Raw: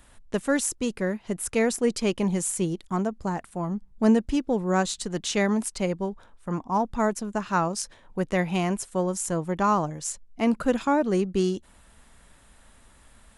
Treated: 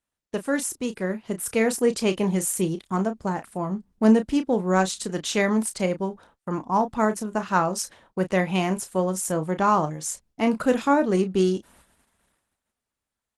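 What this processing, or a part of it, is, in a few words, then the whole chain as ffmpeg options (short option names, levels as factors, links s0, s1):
video call: -filter_complex "[0:a]asplit=3[s0][s1][s2];[s0]afade=t=out:st=10.52:d=0.02[s3];[s1]highshelf=f=3100:g=2,afade=t=in:st=10.52:d=0.02,afade=t=out:st=11:d=0.02[s4];[s2]afade=t=in:st=11:d=0.02[s5];[s3][s4][s5]amix=inputs=3:normalize=0,highpass=f=130:p=1,asplit=2[s6][s7];[s7]adelay=32,volume=0.316[s8];[s6][s8]amix=inputs=2:normalize=0,dynaudnorm=f=230:g=11:m=1.58,agate=range=0.0398:threshold=0.00251:ratio=16:detection=peak,volume=0.891" -ar 48000 -c:a libopus -b:a 20k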